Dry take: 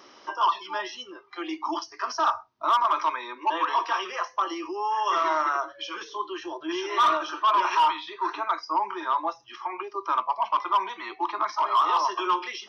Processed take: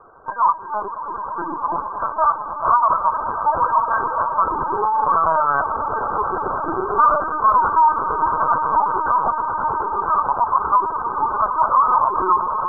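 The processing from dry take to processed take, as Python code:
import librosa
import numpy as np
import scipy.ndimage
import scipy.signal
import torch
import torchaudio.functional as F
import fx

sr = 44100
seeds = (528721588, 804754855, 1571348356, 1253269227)

y = fx.brickwall_bandpass(x, sr, low_hz=320.0, high_hz=1600.0)
y = fx.hum_notches(y, sr, base_hz=50, count=9)
y = fx.echo_swell(y, sr, ms=109, loudest=8, wet_db=-14.0)
y = fx.lpc_vocoder(y, sr, seeds[0], excitation='pitch_kept', order=16)
y = F.gain(torch.from_numpy(y), 6.5).numpy()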